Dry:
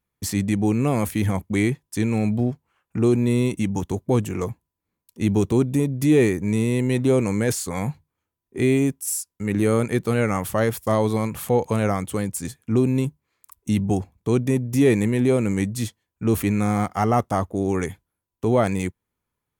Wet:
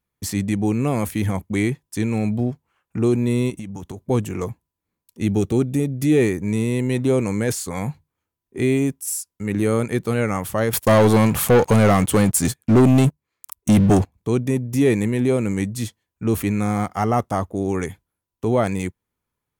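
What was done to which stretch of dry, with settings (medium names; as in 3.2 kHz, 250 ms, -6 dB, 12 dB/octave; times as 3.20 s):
3.50–4.10 s: compression 10:1, threshold -28 dBFS
5.22–6.21 s: Butterworth band-stop 1 kHz, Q 5.3
10.73–14.14 s: waveshaping leveller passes 3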